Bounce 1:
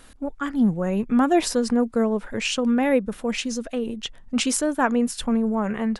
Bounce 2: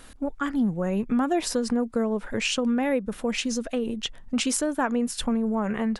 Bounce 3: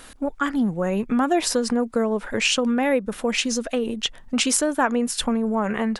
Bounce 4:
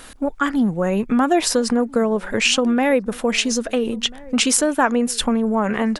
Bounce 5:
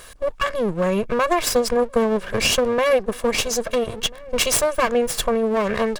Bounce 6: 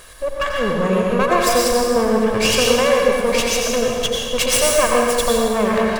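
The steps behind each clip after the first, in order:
compression 2.5:1, threshold -25 dBFS, peak gain reduction 8 dB; trim +1.5 dB
bass shelf 280 Hz -7 dB; trim +6 dB
echo from a far wall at 230 m, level -22 dB; trim +3.5 dB
comb filter that takes the minimum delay 1.8 ms
plate-style reverb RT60 1.7 s, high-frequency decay 0.9×, pre-delay 75 ms, DRR -2 dB

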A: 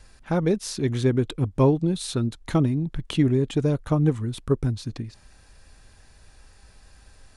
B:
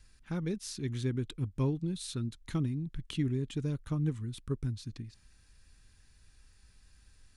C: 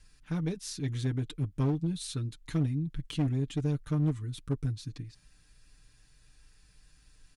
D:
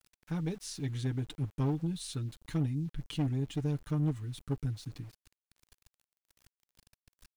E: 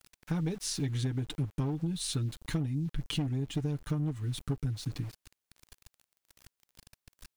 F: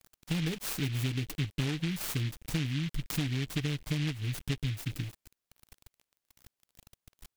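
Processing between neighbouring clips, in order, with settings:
peaking EQ 660 Hz -13 dB 1.5 oct; trim -8.5 dB
comb 6.7 ms, depth 70%; one-sided clip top -28.5 dBFS, bottom -19.5 dBFS
small resonant body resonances 830/2900 Hz, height 8 dB, ringing for 45 ms; small samples zeroed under -50.5 dBFS; trim -2.5 dB
compression 10:1, threshold -36 dBFS, peak gain reduction 11 dB; trim +8 dB
delay time shaken by noise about 2.6 kHz, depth 0.24 ms

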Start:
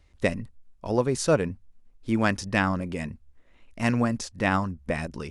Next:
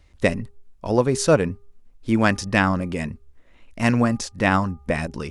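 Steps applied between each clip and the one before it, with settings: de-hum 404.4 Hz, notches 3; trim +5 dB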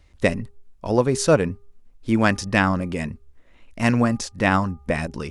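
no audible change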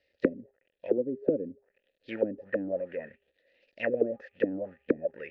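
short-mantissa float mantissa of 2-bit; vowel filter e; touch-sensitive low-pass 280–4800 Hz down, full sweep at -27 dBFS

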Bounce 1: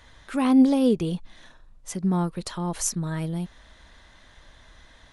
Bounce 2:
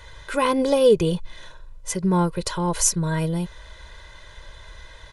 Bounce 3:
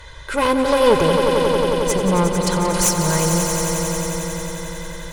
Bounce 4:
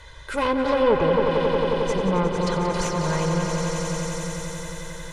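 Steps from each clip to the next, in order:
comb 2 ms, depth 83%; trim +5 dB
one-sided clip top -24.5 dBFS; on a send: echo with a slow build-up 90 ms, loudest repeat 5, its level -8 dB; on the sum: trim +4.5 dB
echo whose repeats swap between lows and highs 283 ms, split 2.1 kHz, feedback 54%, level -6 dB; low-pass that closes with the level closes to 2.4 kHz, closed at -10.5 dBFS; trim -5 dB

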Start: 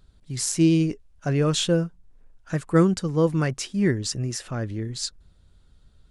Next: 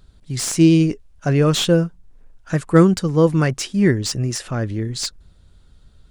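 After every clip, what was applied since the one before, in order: slew-rate limiter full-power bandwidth 290 Hz; trim +6 dB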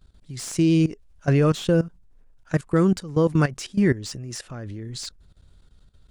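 level held to a coarse grid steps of 17 dB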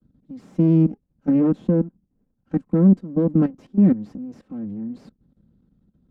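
comb filter that takes the minimum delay 3.8 ms; band-pass filter 210 Hz, Q 2; trim +8 dB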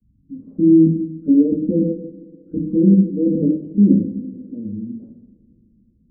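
resonances exaggerated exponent 3; distance through air 400 m; two-slope reverb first 0.8 s, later 3.1 s, from -21 dB, DRR -2.5 dB; trim -1 dB

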